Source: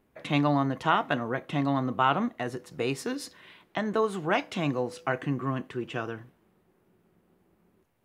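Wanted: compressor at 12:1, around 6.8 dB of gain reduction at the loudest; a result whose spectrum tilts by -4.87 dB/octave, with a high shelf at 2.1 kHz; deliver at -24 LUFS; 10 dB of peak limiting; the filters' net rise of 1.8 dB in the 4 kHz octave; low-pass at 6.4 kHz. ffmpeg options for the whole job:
-af "lowpass=6400,highshelf=f=2100:g=-4,equalizer=f=4000:t=o:g=7,acompressor=threshold=0.0501:ratio=12,volume=3.98,alimiter=limit=0.251:level=0:latency=1"

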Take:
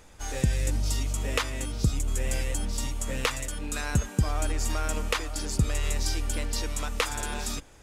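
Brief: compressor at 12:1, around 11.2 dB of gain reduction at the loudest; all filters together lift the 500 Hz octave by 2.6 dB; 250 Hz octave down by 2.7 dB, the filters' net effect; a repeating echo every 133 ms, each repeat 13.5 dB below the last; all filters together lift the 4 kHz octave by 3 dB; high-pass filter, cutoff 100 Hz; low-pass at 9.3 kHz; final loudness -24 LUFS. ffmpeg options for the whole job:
-af "highpass=100,lowpass=9300,equalizer=f=250:t=o:g=-4.5,equalizer=f=500:t=o:g=4,equalizer=f=4000:t=o:g=4,acompressor=threshold=0.0251:ratio=12,aecho=1:1:133|266:0.211|0.0444,volume=3.98"

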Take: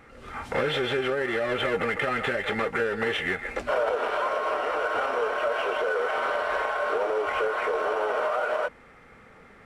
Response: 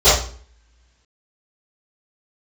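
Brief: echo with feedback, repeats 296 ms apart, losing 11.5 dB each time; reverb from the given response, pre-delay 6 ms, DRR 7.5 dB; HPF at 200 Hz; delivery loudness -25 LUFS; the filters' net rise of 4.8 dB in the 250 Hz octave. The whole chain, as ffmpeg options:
-filter_complex "[0:a]highpass=200,equalizer=f=250:t=o:g=8,aecho=1:1:296|592|888:0.266|0.0718|0.0194,asplit=2[s0][s1];[1:a]atrim=start_sample=2205,adelay=6[s2];[s1][s2]afir=irnorm=-1:irlink=0,volume=0.02[s3];[s0][s3]amix=inputs=2:normalize=0,volume=0.891"

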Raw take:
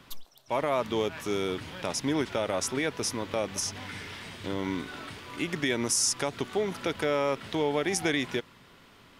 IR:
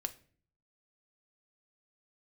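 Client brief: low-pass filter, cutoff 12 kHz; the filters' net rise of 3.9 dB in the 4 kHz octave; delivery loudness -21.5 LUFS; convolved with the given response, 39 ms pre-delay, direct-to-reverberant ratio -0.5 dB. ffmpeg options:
-filter_complex "[0:a]lowpass=12000,equalizer=f=4000:t=o:g=5.5,asplit=2[s0][s1];[1:a]atrim=start_sample=2205,adelay=39[s2];[s1][s2]afir=irnorm=-1:irlink=0,volume=1.12[s3];[s0][s3]amix=inputs=2:normalize=0,volume=1.68"

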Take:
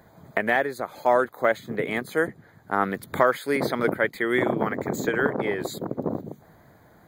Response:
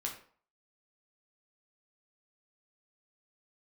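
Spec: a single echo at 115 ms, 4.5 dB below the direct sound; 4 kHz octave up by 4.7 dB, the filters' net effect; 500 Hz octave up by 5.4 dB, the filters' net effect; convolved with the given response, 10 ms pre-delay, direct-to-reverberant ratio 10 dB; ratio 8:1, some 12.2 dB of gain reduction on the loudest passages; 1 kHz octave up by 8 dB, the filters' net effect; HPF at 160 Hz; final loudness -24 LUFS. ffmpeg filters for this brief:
-filter_complex "[0:a]highpass=160,equalizer=f=500:t=o:g=4,equalizer=f=1000:t=o:g=9,equalizer=f=4000:t=o:g=5,acompressor=threshold=0.1:ratio=8,aecho=1:1:115:0.596,asplit=2[s0][s1];[1:a]atrim=start_sample=2205,adelay=10[s2];[s1][s2]afir=irnorm=-1:irlink=0,volume=0.282[s3];[s0][s3]amix=inputs=2:normalize=0,volume=1.12"

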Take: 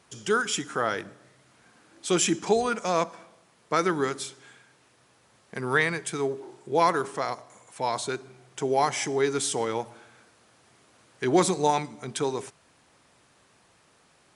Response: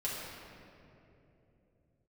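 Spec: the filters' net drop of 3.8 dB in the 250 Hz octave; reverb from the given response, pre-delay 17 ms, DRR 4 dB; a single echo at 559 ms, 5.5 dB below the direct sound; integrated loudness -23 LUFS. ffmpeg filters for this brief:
-filter_complex "[0:a]equalizer=f=250:t=o:g=-6,aecho=1:1:559:0.531,asplit=2[s0][s1];[1:a]atrim=start_sample=2205,adelay=17[s2];[s1][s2]afir=irnorm=-1:irlink=0,volume=0.398[s3];[s0][s3]amix=inputs=2:normalize=0,volume=1.5"

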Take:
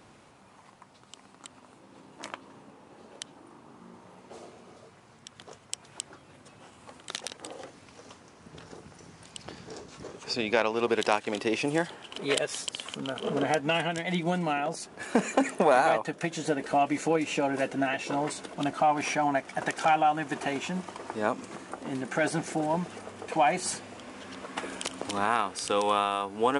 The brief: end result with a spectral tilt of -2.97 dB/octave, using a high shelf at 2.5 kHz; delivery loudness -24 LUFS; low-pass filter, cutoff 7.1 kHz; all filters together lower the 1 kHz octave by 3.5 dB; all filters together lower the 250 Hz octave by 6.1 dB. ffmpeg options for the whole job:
-af "lowpass=7100,equalizer=f=250:t=o:g=-8,equalizer=f=1000:t=o:g=-5,highshelf=f=2500:g=4,volume=2.24"

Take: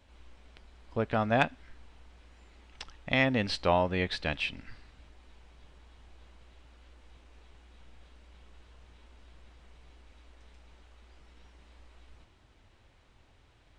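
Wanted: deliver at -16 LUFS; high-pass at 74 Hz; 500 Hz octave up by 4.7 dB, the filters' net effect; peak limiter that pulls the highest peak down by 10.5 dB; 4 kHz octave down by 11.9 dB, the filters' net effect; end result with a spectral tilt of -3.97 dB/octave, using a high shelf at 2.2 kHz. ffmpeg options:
-af "highpass=74,equalizer=f=500:t=o:g=6.5,highshelf=f=2200:g=-7,equalizer=f=4000:t=o:g=-9,volume=6.68,alimiter=limit=0.708:level=0:latency=1"

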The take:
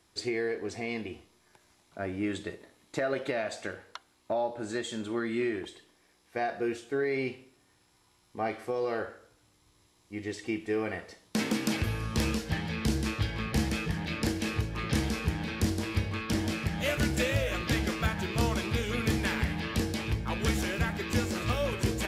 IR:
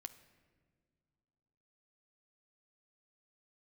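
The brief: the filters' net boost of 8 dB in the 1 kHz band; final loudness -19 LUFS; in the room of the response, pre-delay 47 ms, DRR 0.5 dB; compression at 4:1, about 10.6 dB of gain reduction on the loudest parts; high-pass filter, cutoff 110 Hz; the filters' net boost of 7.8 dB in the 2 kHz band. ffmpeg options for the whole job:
-filter_complex "[0:a]highpass=110,equalizer=f=1000:t=o:g=9,equalizer=f=2000:t=o:g=7,acompressor=threshold=0.02:ratio=4,asplit=2[s0][s1];[1:a]atrim=start_sample=2205,adelay=47[s2];[s1][s2]afir=irnorm=-1:irlink=0,volume=1.68[s3];[s0][s3]amix=inputs=2:normalize=0,volume=5.62"

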